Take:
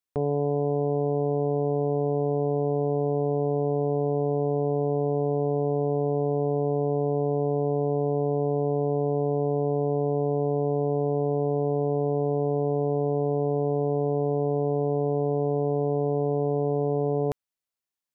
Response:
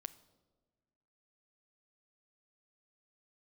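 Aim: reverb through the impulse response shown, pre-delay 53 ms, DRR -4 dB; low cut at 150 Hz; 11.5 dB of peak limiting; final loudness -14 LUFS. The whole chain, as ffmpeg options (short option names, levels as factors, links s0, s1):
-filter_complex "[0:a]highpass=150,alimiter=level_in=1.5:limit=0.0631:level=0:latency=1,volume=0.668,asplit=2[s0][s1];[1:a]atrim=start_sample=2205,adelay=53[s2];[s1][s2]afir=irnorm=-1:irlink=0,volume=2.51[s3];[s0][s3]amix=inputs=2:normalize=0,volume=6.68"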